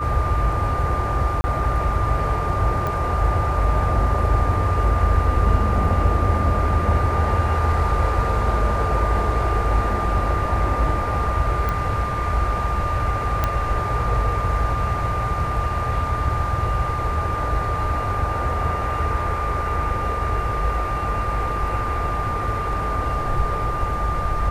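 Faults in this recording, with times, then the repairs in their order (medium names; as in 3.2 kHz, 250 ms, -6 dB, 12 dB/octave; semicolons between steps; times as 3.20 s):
whine 1.2 kHz -25 dBFS
1.41–1.44 s: dropout 30 ms
2.87 s: pop
11.69 s: pop -12 dBFS
13.44 s: pop -7 dBFS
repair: de-click; band-stop 1.2 kHz, Q 30; interpolate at 1.41 s, 30 ms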